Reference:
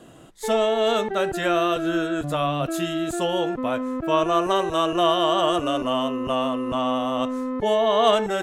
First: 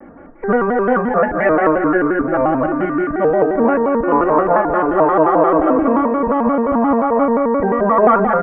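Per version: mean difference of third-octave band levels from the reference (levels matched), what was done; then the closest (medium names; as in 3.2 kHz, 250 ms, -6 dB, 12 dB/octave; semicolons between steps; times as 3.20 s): 11.0 dB: steep low-pass 2.1 kHz 72 dB/octave; comb 3.9 ms, depth 94%; on a send: feedback delay 193 ms, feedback 42%, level -7 dB; on the sum: vibrato with a chosen wave square 5.7 Hz, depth 160 cents; trim +6 dB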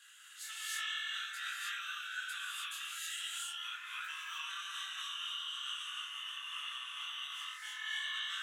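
19.0 dB: elliptic high-pass 1.5 kHz, stop band 60 dB; compression 10:1, threshold -43 dBFS, peak gain reduction 18 dB; gated-style reverb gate 330 ms rising, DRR -5.5 dB; detune thickener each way 42 cents; trim +2.5 dB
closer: first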